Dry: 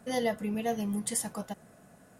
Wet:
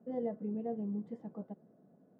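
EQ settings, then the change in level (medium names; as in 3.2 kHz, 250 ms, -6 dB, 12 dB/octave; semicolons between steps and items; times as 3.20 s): Butterworth band-pass 250 Hz, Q 0.8; distance through air 110 m; tilt EQ +3 dB/octave; +2.0 dB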